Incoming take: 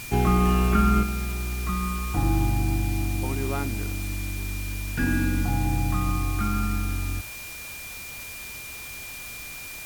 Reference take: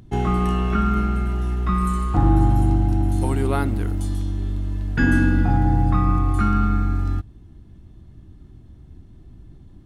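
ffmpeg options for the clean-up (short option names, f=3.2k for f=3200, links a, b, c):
-af "bandreject=f=2.4k:w=30,afwtdn=0.01,asetnsamples=n=441:p=0,asendcmd='1.03 volume volume 7dB',volume=0dB"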